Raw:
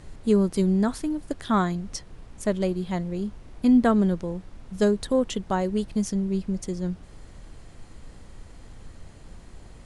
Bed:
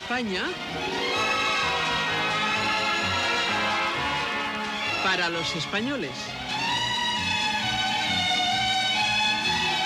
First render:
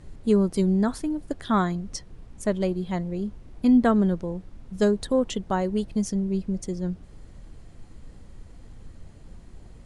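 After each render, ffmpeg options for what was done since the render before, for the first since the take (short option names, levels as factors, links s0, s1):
-af "afftdn=nr=6:nf=-48"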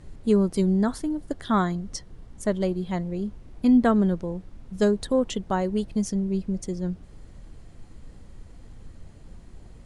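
-filter_complex "[0:a]asettb=1/sr,asplit=3[s0][s1][s2];[s0]atrim=end=0.664[s3];[s1]atrim=start=0.66:end=2.67,asetpts=PTS-STARTPTS,afade=t=in:d=0.004:c=qsin,afade=t=out:st=2.006:d=0.004:c=qsin,bandreject=f=2500:w=12[s4];[s2]atrim=start=2.666[s5];[s3][s4]acrossfade=d=0.004:c1=hsin:c2=qsin[s6];[s6][s5]acrossfade=d=0.004:c1=qsin:c2=hsin"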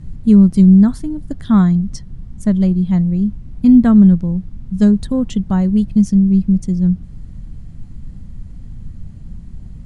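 -af "lowshelf=f=280:t=q:w=1.5:g=13"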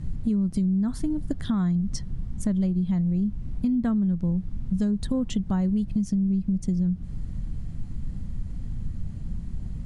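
-af "alimiter=limit=0.224:level=0:latency=1:release=206,acompressor=threshold=0.0794:ratio=4"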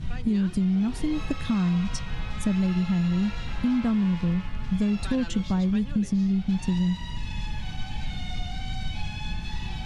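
-filter_complex "[1:a]volume=0.15[s0];[0:a][s0]amix=inputs=2:normalize=0"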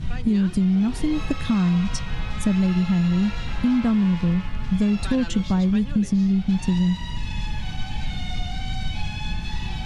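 -af "volume=1.58"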